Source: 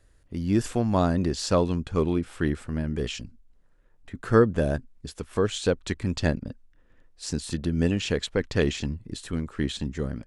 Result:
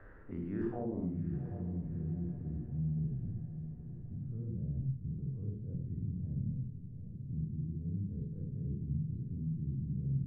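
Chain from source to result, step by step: spectral dilation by 60 ms; high shelf 4200 Hz -6 dB; notches 60/120 Hz; reverse; compressor 6:1, threshold -33 dBFS, peak gain reduction 20 dB; reverse; low-pass sweep 1500 Hz -> 130 Hz, 0.6–1.18; diffused feedback echo 0.782 s, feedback 46%, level -12.5 dB; on a send at -2.5 dB: reverb, pre-delay 47 ms; on the sum: three-band squash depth 40%; gain -5.5 dB

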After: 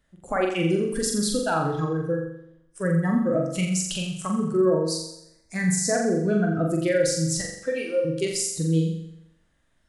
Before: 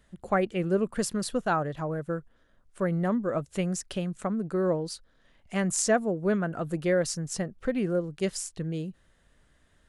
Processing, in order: 7.41–8.05 HPF 530 Hz 12 dB/oct; spectral noise reduction 16 dB; 0.48–0.98 high shelf 4600 Hz +12 dB; in parallel at +1.5 dB: compressor, threshold -35 dBFS, peak gain reduction 15.5 dB; on the sum: limiter -19.5 dBFS, peak gain reduction 11 dB; 4.61–5.95 Butterworth band-stop 3000 Hz, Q 1.8; flutter echo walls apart 7.4 m, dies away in 0.72 s; on a send at -9 dB: reverb RT60 1.0 s, pre-delay 3 ms; on the sum: gain +2.5 dB

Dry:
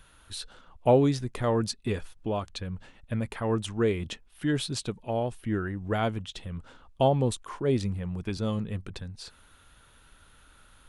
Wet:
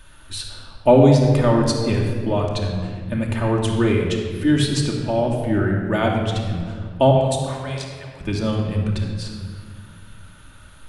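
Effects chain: 7.11–8.21 Bessel high-pass 1000 Hz, order 4; shoebox room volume 3100 m³, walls mixed, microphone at 2.6 m; gain +5.5 dB

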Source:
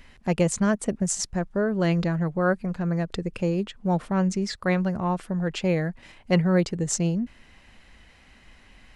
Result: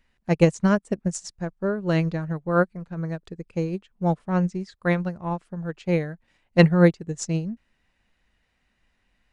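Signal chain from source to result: speed mistake 25 fps video run at 24 fps; upward expander 2.5:1, over -33 dBFS; gain +7.5 dB

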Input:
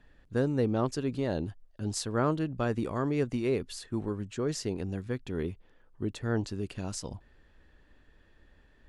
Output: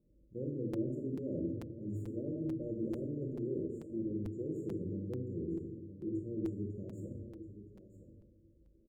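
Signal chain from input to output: self-modulated delay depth 0.16 ms; HPF 48 Hz 12 dB/oct; notches 60/120/180/240/300 Hz; resonator 330 Hz, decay 0.18 s, harmonics odd, mix 80%; reverse; compressor, threshold -41 dBFS, peak gain reduction 8 dB; reverse; brick-wall FIR band-stop 630–6700 Hz; air absorption 190 m; doubler 40 ms -8 dB; echo 0.968 s -12.5 dB; on a send at -1 dB: reverb RT60 1.0 s, pre-delay 6 ms; on the sum: crackling interface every 0.44 s, samples 256, repeat, from 0.73; gain +4.5 dB

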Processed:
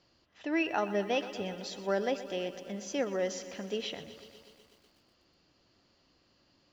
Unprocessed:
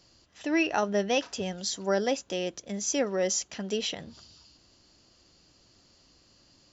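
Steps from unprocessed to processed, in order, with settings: LPF 3500 Hz 12 dB/oct; low shelf 130 Hz -7 dB; lo-fi delay 0.123 s, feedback 80%, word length 9-bit, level -14.5 dB; gain -3.5 dB

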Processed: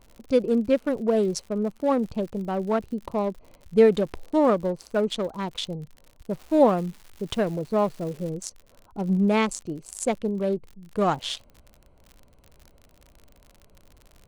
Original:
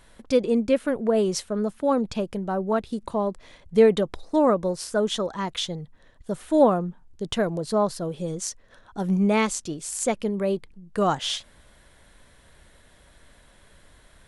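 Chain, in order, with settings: Wiener smoothing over 25 samples; crackle 74/s -37 dBFS, from 6.31 s 360/s, from 8.29 s 49/s

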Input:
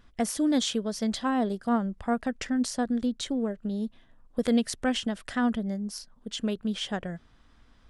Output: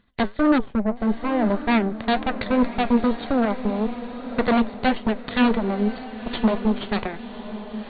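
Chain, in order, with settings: treble ducked by the level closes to 1800 Hz, closed at -26 dBFS; low shelf 65 Hz -8 dB; in parallel at -2.5 dB: limiter -24 dBFS, peak gain reduction 9 dB; on the sum: added harmonics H 5 -33 dB, 6 -8 dB, 7 -19 dB, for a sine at -12.5 dBFS; small resonant body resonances 210/2000/3700 Hz, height 8 dB, ringing for 75 ms; wavefolder -13 dBFS; flange 1.8 Hz, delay 5.9 ms, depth 4.2 ms, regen +78%; 0.58–1.5 tape spacing loss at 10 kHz 44 dB; diffused feedback echo 1.047 s, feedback 42%, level -11.5 dB; gain +5.5 dB; AC-3 48 kbps 32000 Hz

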